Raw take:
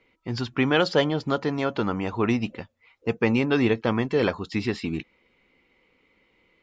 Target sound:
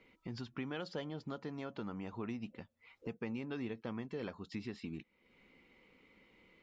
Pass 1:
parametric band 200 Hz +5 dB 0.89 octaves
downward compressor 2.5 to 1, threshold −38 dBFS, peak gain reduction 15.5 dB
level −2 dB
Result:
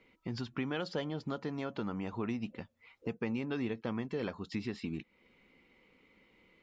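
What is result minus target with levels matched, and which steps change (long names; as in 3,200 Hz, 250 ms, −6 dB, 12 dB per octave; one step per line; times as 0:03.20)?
downward compressor: peak gain reduction −5.5 dB
change: downward compressor 2.5 to 1, threshold −47 dBFS, peak gain reduction 20.5 dB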